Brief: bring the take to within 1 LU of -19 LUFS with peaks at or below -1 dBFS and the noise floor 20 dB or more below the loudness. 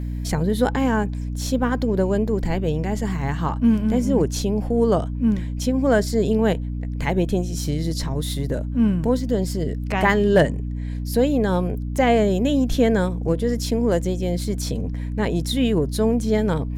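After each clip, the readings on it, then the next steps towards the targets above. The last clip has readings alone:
hum 60 Hz; harmonics up to 300 Hz; hum level -24 dBFS; loudness -21.5 LUFS; peak -4.5 dBFS; loudness target -19.0 LUFS
-> de-hum 60 Hz, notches 5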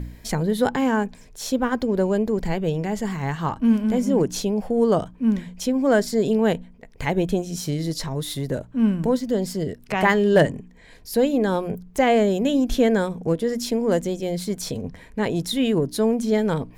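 hum none; loudness -22.5 LUFS; peak -5.0 dBFS; loudness target -19.0 LUFS
-> gain +3.5 dB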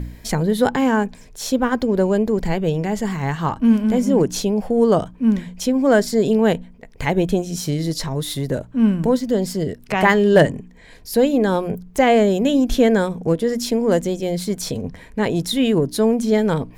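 loudness -19.0 LUFS; peak -1.5 dBFS; noise floor -44 dBFS

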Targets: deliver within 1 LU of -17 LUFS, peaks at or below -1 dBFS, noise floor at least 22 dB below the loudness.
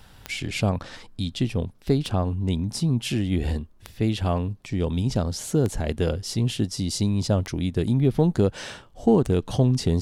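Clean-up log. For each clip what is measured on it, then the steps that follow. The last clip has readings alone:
clicks 6; loudness -25.0 LUFS; peak -7.0 dBFS; loudness target -17.0 LUFS
-> de-click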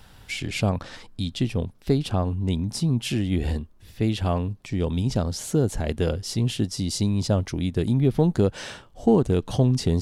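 clicks 0; loudness -25.0 LUFS; peak -7.0 dBFS; loudness target -17.0 LUFS
-> gain +8 dB; limiter -1 dBFS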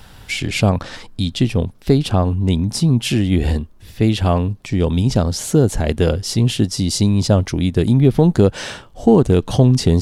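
loudness -17.0 LUFS; peak -1.0 dBFS; noise floor -43 dBFS

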